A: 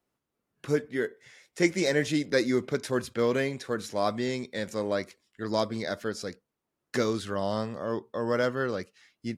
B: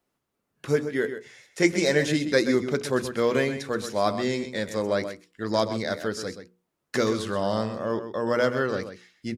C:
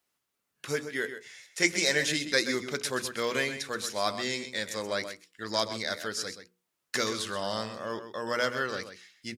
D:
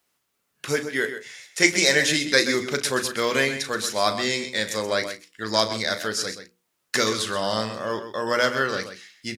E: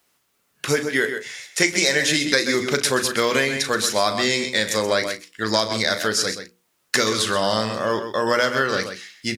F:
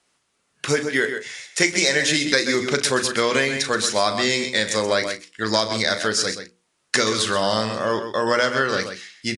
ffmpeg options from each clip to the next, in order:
-filter_complex "[0:a]bandreject=f=60:t=h:w=6,bandreject=f=120:t=h:w=6,bandreject=f=180:t=h:w=6,bandreject=f=240:t=h:w=6,bandreject=f=300:t=h:w=6,bandreject=f=360:t=h:w=6,bandreject=f=420:t=h:w=6,bandreject=f=480:t=h:w=6,asplit=2[a][b];[b]adelay=128.3,volume=-10dB,highshelf=f=4k:g=-2.89[c];[a][c]amix=inputs=2:normalize=0,volume=3.5dB"
-af "tiltshelf=f=1.1k:g=-7.5,volume=-3.5dB"
-filter_complex "[0:a]asplit=2[a][b];[b]adelay=37,volume=-12dB[c];[a][c]amix=inputs=2:normalize=0,volume=7dB"
-af "acompressor=threshold=-22dB:ratio=5,volume=6.5dB"
-af "aresample=22050,aresample=44100"

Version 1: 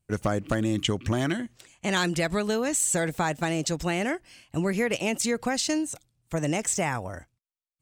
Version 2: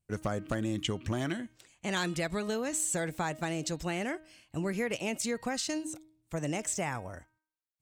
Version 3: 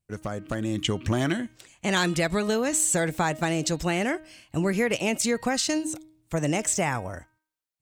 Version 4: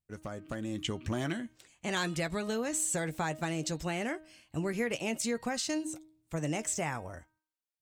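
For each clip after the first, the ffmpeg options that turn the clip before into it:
-af "bandreject=f=312.9:t=h:w=4,bandreject=f=625.8:t=h:w=4,bandreject=f=938.7:t=h:w=4,bandreject=f=1.2516k:t=h:w=4,bandreject=f=1.5645k:t=h:w=4,bandreject=f=1.8774k:t=h:w=4,bandreject=f=2.1903k:t=h:w=4,bandreject=f=2.5032k:t=h:w=4,bandreject=f=2.8161k:t=h:w=4,bandreject=f=3.129k:t=h:w=4,bandreject=f=3.4419k:t=h:w=4,bandreject=f=3.7548k:t=h:w=4,bandreject=f=4.0677k:t=h:w=4,bandreject=f=4.3806k:t=h:w=4,volume=-6.5dB"
-af "dynaudnorm=f=210:g=7:m=8dB"
-filter_complex "[0:a]asplit=2[a][b];[b]adelay=13,volume=-12dB[c];[a][c]amix=inputs=2:normalize=0,volume=-8.5dB"

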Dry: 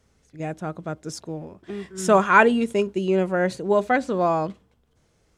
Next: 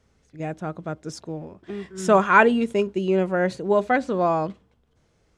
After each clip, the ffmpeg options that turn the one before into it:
-af "highshelf=f=9.5k:g=-12"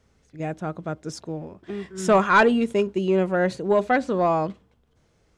-af "acontrast=75,volume=-6dB"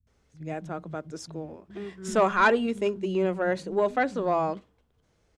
-filter_complex "[0:a]acrossover=split=180[a][b];[b]adelay=70[c];[a][c]amix=inputs=2:normalize=0,volume=-4dB"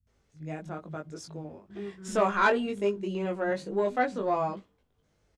-filter_complex "[0:a]asplit=2[a][b];[b]adelay=20,volume=-3dB[c];[a][c]amix=inputs=2:normalize=0,volume=-4.5dB"

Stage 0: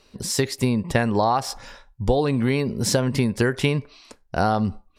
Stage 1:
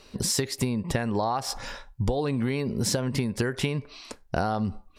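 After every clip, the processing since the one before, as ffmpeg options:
-af "acompressor=threshold=-28dB:ratio=6,volume=4.5dB"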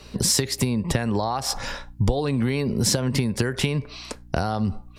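-filter_complex "[0:a]aeval=exprs='val(0)+0.00251*(sin(2*PI*60*n/s)+sin(2*PI*2*60*n/s)/2+sin(2*PI*3*60*n/s)/3+sin(2*PI*4*60*n/s)/4+sin(2*PI*5*60*n/s)/5)':c=same,acrossover=split=130|3000[a][b][c];[b]acompressor=threshold=-27dB:ratio=6[d];[a][d][c]amix=inputs=3:normalize=0,volume=6dB"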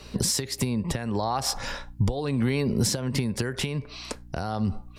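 -af "alimiter=limit=-14dB:level=0:latency=1:release=452"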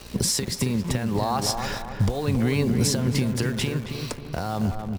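-filter_complex "[0:a]acrusher=bits=8:dc=4:mix=0:aa=0.000001,asplit=2[a][b];[b]adelay=272,lowpass=f=1.5k:p=1,volume=-5.5dB,asplit=2[c][d];[d]adelay=272,lowpass=f=1.5k:p=1,volume=0.5,asplit=2[e][f];[f]adelay=272,lowpass=f=1.5k:p=1,volume=0.5,asplit=2[g][h];[h]adelay=272,lowpass=f=1.5k:p=1,volume=0.5,asplit=2[i][j];[j]adelay=272,lowpass=f=1.5k:p=1,volume=0.5,asplit=2[k][l];[l]adelay=272,lowpass=f=1.5k:p=1,volume=0.5[m];[a][c][e][g][i][k][m]amix=inputs=7:normalize=0,volume=1.5dB"

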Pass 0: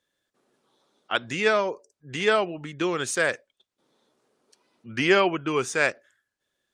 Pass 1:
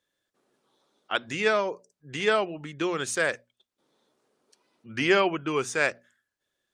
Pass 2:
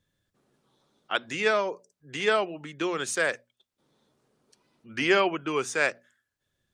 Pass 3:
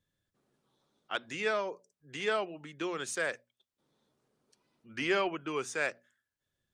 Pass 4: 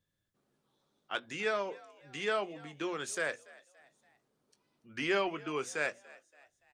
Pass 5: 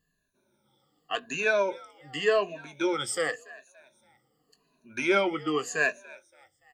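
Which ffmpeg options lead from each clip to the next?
-af "bandreject=f=60:t=h:w=6,bandreject=f=120:t=h:w=6,bandreject=f=180:t=h:w=6,bandreject=f=240:t=h:w=6,volume=-2dB"
-filter_complex "[0:a]lowshelf=f=120:g=-10.5,acrossover=split=140[a][b];[a]acompressor=mode=upward:threshold=-58dB:ratio=2.5[c];[c][b]amix=inputs=2:normalize=0"
-af "asoftclip=type=tanh:threshold=-11dB,volume=-6.5dB"
-filter_complex "[0:a]asplit=2[a][b];[b]adelay=20,volume=-12.5dB[c];[a][c]amix=inputs=2:normalize=0,asplit=4[d][e][f][g];[e]adelay=286,afreqshift=65,volume=-22dB[h];[f]adelay=572,afreqshift=130,volume=-28.9dB[i];[g]adelay=858,afreqshift=195,volume=-35.9dB[j];[d][h][i][j]amix=inputs=4:normalize=0,volume=-1.5dB"
-af "afftfilt=real='re*pow(10,20/40*sin(2*PI*(1.5*log(max(b,1)*sr/1024/100)/log(2)-(-0.88)*(pts-256)/sr)))':imag='im*pow(10,20/40*sin(2*PI*(1.5*log(max(b,1)*sr/1024/100)/log(2)-(-0.88)*(pts-256)/sr)))':win_size=1024:overlap=0.75,volume=2.5dB"

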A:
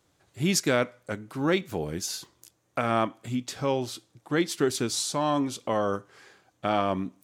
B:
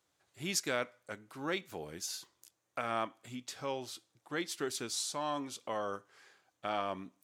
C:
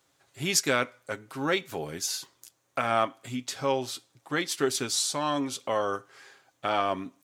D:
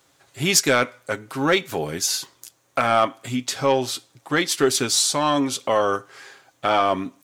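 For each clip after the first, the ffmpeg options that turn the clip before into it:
-af "lowshelf=f=390:g=-11,volume=-7dB"
-af "aecho=1:1:7.4:0.38,volume=8.5dB"
-af "asoftclip=type=tanh:threshold=-14.5dB,volume=8.5dB"

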